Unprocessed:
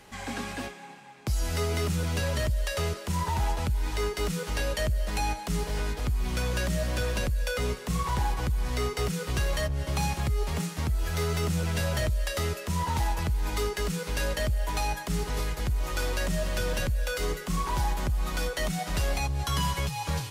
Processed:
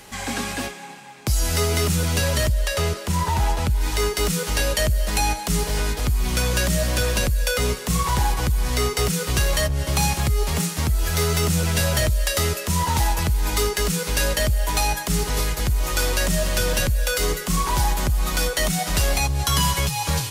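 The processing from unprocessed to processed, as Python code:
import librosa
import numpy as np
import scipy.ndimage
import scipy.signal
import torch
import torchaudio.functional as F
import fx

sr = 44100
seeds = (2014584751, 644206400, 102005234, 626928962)

y = fx.high_shelf(x, sr, hz=4400.0, db=fx.steps((0.0, 8.0), (2.48, 2.5), (3.8, 8.5)))
y = F.gain(torch.from_numpy(y), 6.5).numpy()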